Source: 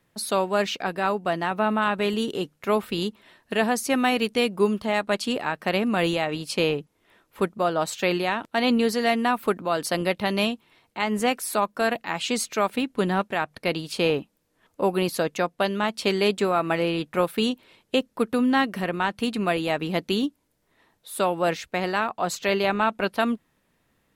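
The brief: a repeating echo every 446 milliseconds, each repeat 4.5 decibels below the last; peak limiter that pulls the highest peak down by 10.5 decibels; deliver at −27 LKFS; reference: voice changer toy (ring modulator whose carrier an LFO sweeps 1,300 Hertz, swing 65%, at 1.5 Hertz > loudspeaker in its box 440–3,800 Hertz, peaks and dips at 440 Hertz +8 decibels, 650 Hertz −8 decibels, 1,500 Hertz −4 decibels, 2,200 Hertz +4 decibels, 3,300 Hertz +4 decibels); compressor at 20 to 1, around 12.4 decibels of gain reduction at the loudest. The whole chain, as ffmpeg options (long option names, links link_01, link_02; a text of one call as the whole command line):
ffmpeg -i in.wav -af "acompressor=threshold=-29dB:ratio=20,alimiter=level_in=3dB:limit=-24dB:level=0:latency=1,volume=-3dB,aecho=1:1:446|892|1338|1784|2230|2676|3122|3568|4014:0.596|0.357|0.214|0.129|0.0772|0.0463|0.0278|0.0167|0.01,aeval=exprs='val(0)*sin(2*PI*1300*n/s+1300*0.65/1.5*sin(2*PI*1.5*n/s))':channel_layout=same,highpass=440,equalizer=frequency=440:width_type=q:width=4:gain=8,equalizer=frequency=650:width_type=q:width=4:gain=-8,equalizer=frequency=1500:width_type=q:width=4:gain=-4,equalizer=frequency=2200:width_type=q:width=4:gain=4,equalizer=frequency=3300:width_type=q:width=4:gain=4,lowpass=frequency=3800:width=0.5412,lowpass=frequency=3800:width=1.3066,volume=10.5dB" out.wav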